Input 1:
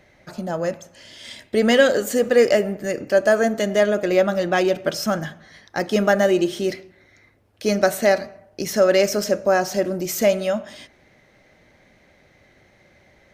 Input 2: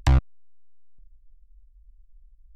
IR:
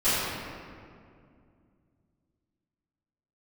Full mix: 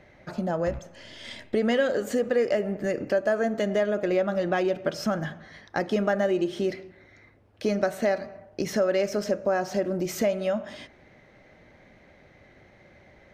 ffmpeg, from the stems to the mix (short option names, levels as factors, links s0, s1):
-filter_complex "[0:a]volume=1.19,asplit=2[s0][s1];[1:a]adelay=600,volume=0.355[s2];[s1]apad=whole_len=139189[s3];[s2][s3]sidechaincompress=threshold=0.0708:ratio=8:attack=16:release=1400[s4];[s0][s4]amix=inputs=2:normalize=0,lowpass=f=2400:p=1,acompressor=threshold=0.0562:ratio=2.5"